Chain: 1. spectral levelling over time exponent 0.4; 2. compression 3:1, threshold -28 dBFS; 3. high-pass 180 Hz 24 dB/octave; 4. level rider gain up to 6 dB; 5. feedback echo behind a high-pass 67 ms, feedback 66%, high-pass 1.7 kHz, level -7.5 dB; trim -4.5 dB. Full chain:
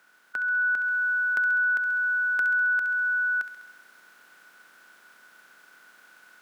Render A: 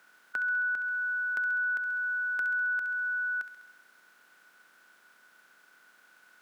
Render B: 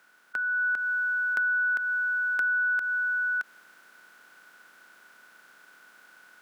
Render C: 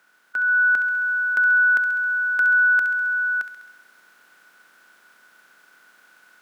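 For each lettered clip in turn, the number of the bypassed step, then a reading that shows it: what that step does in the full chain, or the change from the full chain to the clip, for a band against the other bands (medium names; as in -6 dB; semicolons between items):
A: 4, momentary loudness spread change -2 LU; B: 5, echo-to-direct -8.5 dB to none; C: 2, crest factor change -2.0 dB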